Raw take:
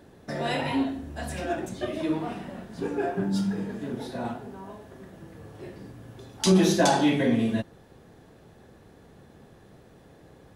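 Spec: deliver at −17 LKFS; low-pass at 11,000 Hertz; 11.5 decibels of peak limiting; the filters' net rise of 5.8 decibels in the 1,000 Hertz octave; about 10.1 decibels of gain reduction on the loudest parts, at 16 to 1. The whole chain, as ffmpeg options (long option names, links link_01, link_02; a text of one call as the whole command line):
ffmpeg -i in.wav -af "lowpass=11000,equalizer=frequency=1000:width_type=o:gain=8,acompressor=threshold=-23dB:ratio=16,volume=15dB,alimiter=limit=-6.5dB:level=0:latency=1" out.wav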